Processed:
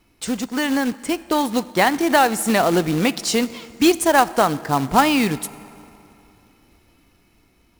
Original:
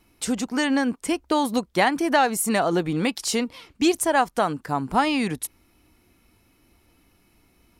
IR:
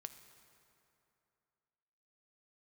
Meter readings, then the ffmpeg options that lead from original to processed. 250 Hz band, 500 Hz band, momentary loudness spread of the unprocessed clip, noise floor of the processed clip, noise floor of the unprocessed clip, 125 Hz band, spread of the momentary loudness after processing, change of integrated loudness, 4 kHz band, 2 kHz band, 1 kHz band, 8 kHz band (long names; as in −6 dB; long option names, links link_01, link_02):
+4.0 dB, +4.5 dB, 8 LU, −59 dBFS, −63 dBFS, +5.0 dB, 9 LU, +4.0 dB, +4.5 dB, +4.0 dB, +4.5 dB, +3.0 dB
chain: -filter_complex "[0:a]dynaudnorm=framelen=750:gausssize=5:maxgain=5.5dB,asplit=2[link_01][link_02];[1:a]atrim=start_sample=2205,lowpass=9000[link_03];[link_02][link_03]afir=irnorm=-1:irlink=0,volume=2.5dB[link_04];[link_01][link_04]amix=inputs=2:normalize=0,acrusher=bits=3:mode=log:mix=0:aa=0.000001,volume=-3.5dB"